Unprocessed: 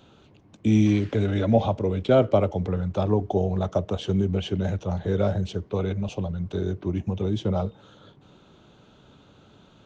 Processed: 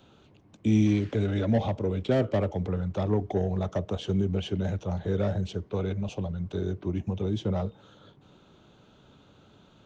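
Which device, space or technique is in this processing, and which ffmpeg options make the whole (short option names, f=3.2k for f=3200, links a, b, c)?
one-band saturation: -filter_complex "[0:a]acrossover=split=440|4300[a][b][c];[b]asoftclip=type=tanh:threshold=-25dB[d];[a][d][c]amix=inputs=3:normalize=0,volume=-3dB"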